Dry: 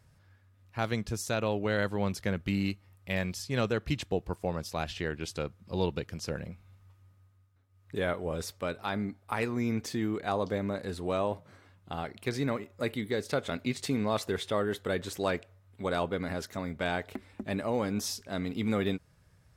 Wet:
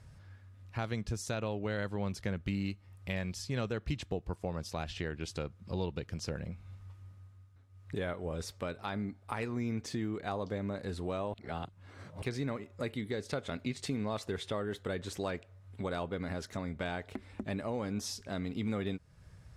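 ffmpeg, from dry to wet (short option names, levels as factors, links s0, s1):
-filter_complex "[0:a]asplit=3[s0][s1][s2];[s0]atrim=end=11.342[s3];[s1]atrim=start=11.338:end=12.222,asetpts=PTS-STARTPTS,areverse[s4];[s2]atrim=start=12.218[s5];[s3][s4]acrossfade=d=0.004:c1=hsin:c2=hsin[s6];[s6][s5]acrossfade=d=0.004:c1=hsin:c2=hsin,acompressor=threshold=0.00501:ratio=2,lowpass=10000,lowshelf=f=130:g=6.5,volume=1.58"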